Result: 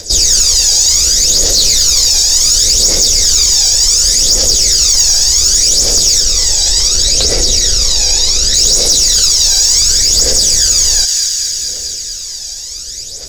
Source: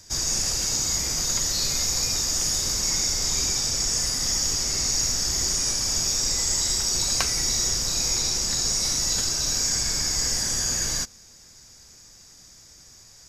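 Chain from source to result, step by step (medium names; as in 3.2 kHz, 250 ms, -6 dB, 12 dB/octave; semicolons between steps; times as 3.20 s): 6.20–8.54 s: treble shelf 4.8 kHz -10.5 dB; phaser 0.68 Hz, delay 1.3 ms, feedback 69%; graphic EQ 125/250/500/1000/2000/4000/8000 Hz -11/-5/+11/-10/-3/+9/+5 dB; saturation -8 dBFS, distortion -19 dB; feedback echo behind a high-pass 223 ms, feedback 72%, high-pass 1.6 kHz, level -13 dB; loudness maximiser +16 dB; trim -1 dB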